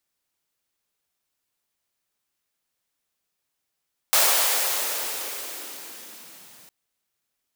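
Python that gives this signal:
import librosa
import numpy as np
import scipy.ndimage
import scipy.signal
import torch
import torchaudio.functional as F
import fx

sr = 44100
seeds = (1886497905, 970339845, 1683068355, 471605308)

y = fx.riser_noise(sr, seeds[0], length_s=2.56, colour='white', kind='highpass', start_hz=660.0, end_hz=130.0, q=1.7, swell_db=-33.0, law='linear')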